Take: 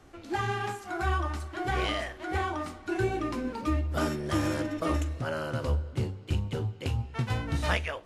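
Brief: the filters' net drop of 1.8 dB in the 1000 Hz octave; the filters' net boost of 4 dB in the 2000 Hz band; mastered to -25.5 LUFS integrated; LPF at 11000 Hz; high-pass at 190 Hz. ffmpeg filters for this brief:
-af "highpass=190,lowpass=11k,equalizer=f=1k:t=o:g=-4.5,equalizer=f=2k:t=o:g=7,volume=7dB"

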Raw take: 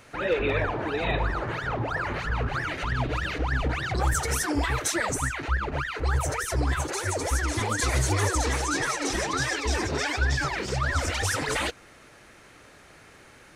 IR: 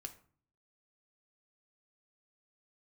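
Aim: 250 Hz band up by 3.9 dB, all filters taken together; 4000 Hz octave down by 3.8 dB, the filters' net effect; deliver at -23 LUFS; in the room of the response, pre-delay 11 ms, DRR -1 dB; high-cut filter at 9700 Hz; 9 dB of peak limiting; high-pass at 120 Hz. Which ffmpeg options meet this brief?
-filter_complex "[0:a]highpass=120,lowpass=9.7k,equalizer=f=250:t=o:g=5.5,equalizer=f=4k:t=o:g=-5,alimiter=limit=-22.5dB:level=0:latency=1,asplit=2[a][b];[1:a]atrim=start_sample=2205,adelay=11[c];[b][c]afir=irnorm=-1:irlink=0,volume=5.5dB[d];[a][d]amix=inputs=2:normalize=0,volume=4.5dB"

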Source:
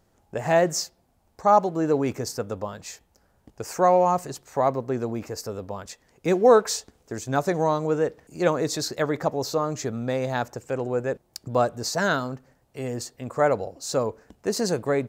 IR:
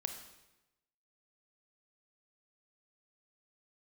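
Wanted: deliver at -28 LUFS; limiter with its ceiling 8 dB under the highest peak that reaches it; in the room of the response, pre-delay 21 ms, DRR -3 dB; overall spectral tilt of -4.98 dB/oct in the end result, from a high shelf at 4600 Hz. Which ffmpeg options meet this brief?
-filter_complex "[0:a]highshelf=f=4.6k:g=-3.5,alimiter=limit=-13.5dB:level=0:latency=1,asplit=2[a][b];[1:a]atrim=start_sample=2205,adelay=21[c];[b][c]afir=irnorm=-1:irlink=0,volume=3.5dB[d];[a][d]amix=inputs=2:normalize=0,volume=-5.5dB"

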